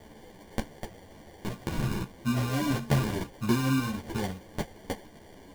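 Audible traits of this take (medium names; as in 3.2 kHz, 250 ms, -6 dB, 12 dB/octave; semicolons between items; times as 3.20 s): a quantiser's noise floor 8-bit, dither triangular; phasing stages 8, 0.38 Hz, lowest notch 620–3800 Hz; aliases and images of a low sample rate 1.3 kHz, jitter 0%; a shimmering, thickened sound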